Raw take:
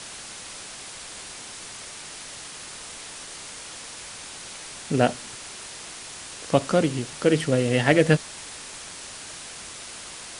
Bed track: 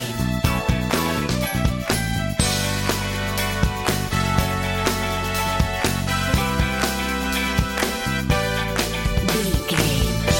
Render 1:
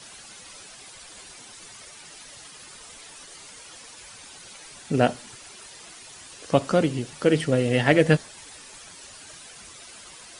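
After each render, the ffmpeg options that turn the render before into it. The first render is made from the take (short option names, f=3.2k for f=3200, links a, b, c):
-af "afftdn=nr=10:nf=-40"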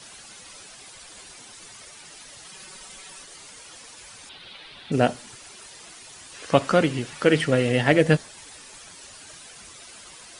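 -filter_complex "[0:a]asettb=1/sr,asplit=3[a][b][c];[a]atrim=end=2.464[d];[b]atrim=start=2.46:end=3.22,asetpts=PTS-STARTPTS,afade=t=in:d=0.004:c=qsin,afade=t=out:st=0.756:d=0.004:c=qsin,aecho=1:1:5.3:0.69,atrim=end_sample=33516[e];[c]atrim=start=3.216[f];[d][e]acrossfade=d=0.004:c1=hsin:c2=qsin[g];[g][f]acrossfade=d=0.004:c1=qsin:c2=hsin,asettb=1/sr,asplit=3[h][i][j];[h]atrim=end=4.294[k];[i]atrim=start=4.29:end=4.92,asetpts=PTS-STARTPTS,afade=t=in:d=0.004:c=qsin,afade=t=out:st=0.626:d=0.004:c=qsin,highshelf=f=5k:t=q:w=3:g=-12[l];[j]atrim=start=4.916[m];[k][l]acrossfade=d=0.004:c1=hsin:c2=qsin[n];[n][m]acrossfade=d=0.004:c1=qsin:c2=hsin,asettb=1/sr,asplit=3[o][p][q];[o]atrim=end=6.344[r];[p]atrim=start=6.34:end=7.72,asetpts=PTS-STARTPTS,afade=t=in:d=0.004:c=qsin,afade=t=out:st=1.376:d=0.004:c=qsin,equalizer=f=1.8k:t=o:w=2:g=7[s];[q]atrim=start=7.716[t];[r][s]acrossfade=d=0.004:c1=hsin:c2=qsin[u];[u][t]acrossfade=d=0.004:c1=qsin:c2=hsin"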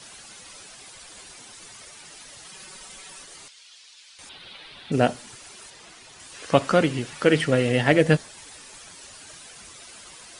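-filter_complex "[0:a]asettb=1/sr,asplit=3[a][b][c];[a]atrim=end=3.484[d];[b]atrim=start=3.48:end=4.19,asetpts=PTS-STARTPTS,afade=t=in:d=0.004:c=qsin,afade=t=out:st=0.706:d=0.004:c=qsin,bandpass=f=3.8k:t=q:w=1.5[e];[c]atrim=start=4.186[f];[d][e]acrossfade=d=0.004:c1=hsin:c2=qsin[g];[g][f]acrossfade=d=0.004:c1=qsin:c2=hsin,asettb=1/sr,asplit=3[h][i][j];[h]atrim=end=5.704[k];[i]atrim=start=5.7:end=6.2,asetpts=PTS-STARTPTS,afade=t=in:d=0.004:c=qsin,afade=t=out:st=0.496:d=0.004:c=qsin,highshelf=f=8.2k:g=-11.5[l];[j]atrim=start=6.196[m];[k][l]acrossfade=d=0.004:c1=hsin:c2=qsin[n];[n][m]acrossfade=d=0.004:c1=qsin:c2=hsin"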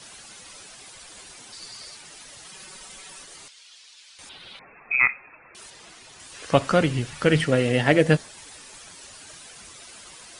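-filter_complex "[0:a]asettb=1/sr,asplit=3[a][b][c];[a]atrim=end=1.524[d];[b]atrim=start=1.52:end=1.97,asetpts=PTS-STARTPTS,afade=t=in:d=0.004:c=qsin,afade=t=out:st=0.446:d=0.004:c=qsin,equalizer=f=4.6k:w=4.9:g=13.5[e];[c]atrim=start=1.966[f];[d][e]acrossfade=d=0.004:c1=hsin:c2=qsin[g];[g][f]acrossfade=d=0.004:c1=qsin:c2=hsin,asettb=1/sr,asplit=3[h][i][j];[h]atrim=end=4.594[k];[i]atrim=start=4.59:end=5.55,asetpts=PTS-STARTPTS,afade=t=in:d=0.004:c=qsin,afade=t=out:st=0.956:d=0.004:c=qsin,lowpass=f=2.3k:t=q:w=0.5098,lowpass=f=2.3k:t=q:w=0.6013,lowpass=f=2.3k:t=q:w=0.9,lowpass=f=2.3k:t=q:w=2.563,afreqshift=-2700[l];[j]atrim=start=5.546[m];[k][l]acrossfade=d=0.004:c1=hsin:c2=qsin[n];[n][m]acrossfade=d=0.004:c1=qsin:c2=hsin,asettb=1/sr,asplit=3[o][p][q];[o]atrim=end=6.224[r];[p]atrim=start=6.22:end=7.44,asetpts=PTS-STARTPTS,afade=t=in:d=0.004:c=qsin,afade=t=out:st=1.216:d=0.004:c=qsin,asubboost=boost=9:cutoff=150[s];[q]atrim=start=7.436[t];[r][s]acrossfade=d=0.004:c1=hsin:c2=qsin[u];[u][t]acrossfade=d=0.004:c1=qsin:c2=hsin"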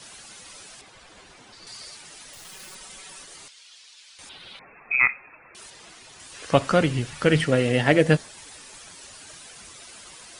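-filter_complex "[0:a]asettb=1/sr,asplit=3[a][b][c];[a]atrim=end=0.814[d];[b]atrim=start=0.81:end=1.67,asetpts=PTS-STARTPTS,afade=t=in:d=0.004:c=qsin,afade=t=out:st=0.856:d=0.004:c=qsin,aemphasis=mode=reproduction:type=75fm[e];[c]atrim=start=1.666[f];[d][e]acrossfade=d=0.004:c1=hsin:c2=qsin[g];[g][f]acrossfade=d=0.004:c1=qsin:c2=hsin,asettb=1/sr,asplit=3[h][i][j];[h]atrim=end=2.334[k];[i]atrim=start=2.33:end=2.75,asetpts=PTS-STARTPTS,afade=t=in:d=0.004:c=qsin,afade=t=out:st=0.416:d=0.004:c=qsin,acrusher=bits=8:dc=4:mix=0:aa=0.000001[l];[j]atrim=start=2.746[m];[k][l]acrossfade=d=0.004:c1=hsin:c2=qsin[n];[n][m]acrossfade=d=0.004:c1=qsin:c2=hsin"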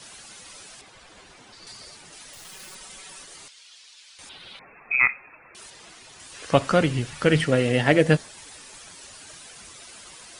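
-filter_complex "[0:a]asettb=1/sr,asplit=3[a][b][c];[a]atrim=end=1.724[d];[b]atrim=start=1.72:end=2.13,asetpts=PTS-STARTPTS,afade=t=in:d=0.004:c=qsin,afade=t=out:st=0.406:d=0.004:c=qsin,tiltshelf=f=970:g=3.5[e];[c]atrim=start=2.126[f];[d][e]acrossfade=d=0.004:c1=hsin:c2=qsin[g];[g][f]acrossfade=d=0.004:c1=qsin:c2=hsin"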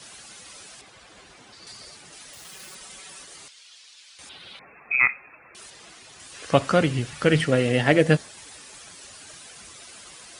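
-af "highpass=41,bandreject=f=930:w=24"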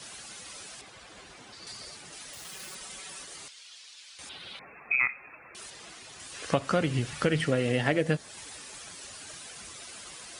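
-af "acompressor=threshold=-23dB:ratio=4"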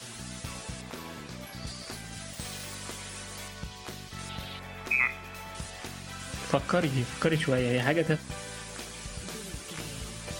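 -filter_complex "[1:a]volume=-20.5dB[a];[0:a][a]amix=inputs=2:normalize=0"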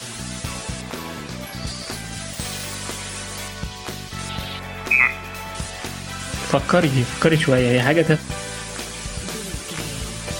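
-af "volume=10dB,alimiter=limit=-2dB:level=0:latency=1"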